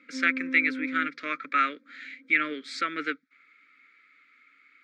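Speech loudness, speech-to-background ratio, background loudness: -27.0 LUFS, 8.5 dB, -35.5 LUFS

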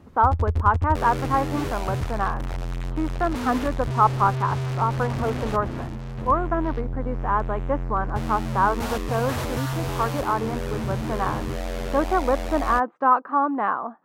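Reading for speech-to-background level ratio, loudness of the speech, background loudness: 4.5 dB, -25.0 LUFS, -29.5 LUFS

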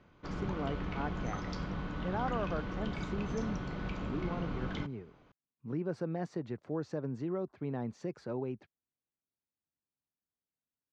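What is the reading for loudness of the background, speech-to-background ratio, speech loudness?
-39.5 LUFS, -0.5 dB, -40.0 LUFS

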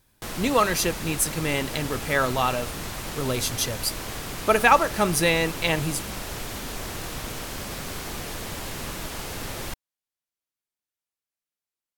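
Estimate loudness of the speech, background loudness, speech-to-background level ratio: -24.0 LUFS, -33.0 LUFS, 9.0 dB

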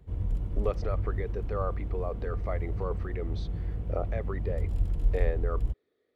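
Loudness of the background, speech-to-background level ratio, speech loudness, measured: -33.5 LUFS, -4.0 dB, -37.5 LUFS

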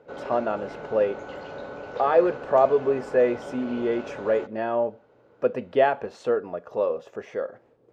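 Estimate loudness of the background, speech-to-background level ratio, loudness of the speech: -38.0 LUFS, 12.5 dB, -25.5 LUFS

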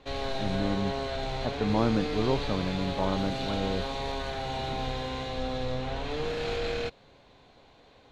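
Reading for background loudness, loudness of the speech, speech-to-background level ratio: -33.0 LUFS, -31.0 LUFS, 2.0 dB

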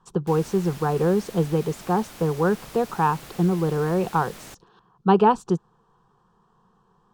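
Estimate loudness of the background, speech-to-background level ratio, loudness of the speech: -42.0 LUFS, 18.5 dB, -23.5 LUFS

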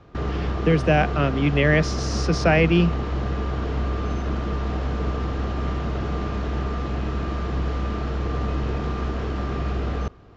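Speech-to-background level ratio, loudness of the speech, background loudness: 6.0 dB, -21.0 LUFS, -27.0 LUFS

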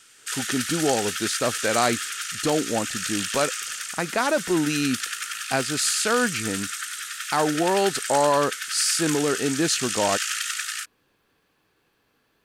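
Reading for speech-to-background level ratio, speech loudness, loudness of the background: 4.0 dB, -24.5 LUFS, -28.5 LUFS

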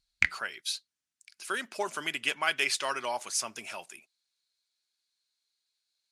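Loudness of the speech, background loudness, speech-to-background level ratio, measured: -32.0 LUFS, -29.0 LUFS, -3.0 dB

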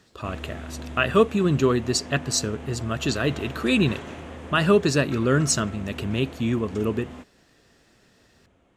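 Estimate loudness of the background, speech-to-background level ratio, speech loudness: -39.0 LUFS, 15.5 dB, -23.5 LUFS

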